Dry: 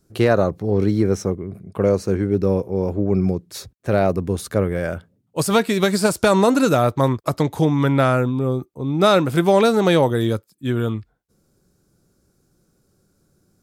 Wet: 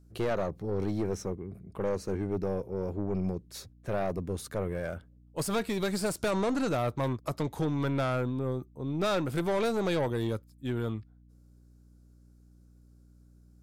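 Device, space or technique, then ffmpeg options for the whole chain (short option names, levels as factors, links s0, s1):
valve amplifier with mains hum: -filter_complex "[0:a]aeval=exprs='(tanh(5.62*val(0)+0.3)-tanh(0.3))/5.62':c=same,aeval=exprs='val(0)+0.00447*(sin(2*PI*60*n/s)+sin(2*PI*2*60*n/s)/2+sin(2*PI*3*60*n/s)/3+sin(2*PI*4*60*n/s)/4+sin(2*PI*5*60*n/s)/5)':c=same,asplit=3[s0][s1][s2];[s0]afade=t=out:st=6.3:d=0.02[s3];[s1]lowpass=8100,afade=t=in:st=6.3:d=0.02,afade=t=out:st=6.72:d=0.02[s4];[s2]afade=t=in:st=6.72:d=0.02[s5];[s3][s4][s5]amix=inputs=3:normalize=0,volume=0.355"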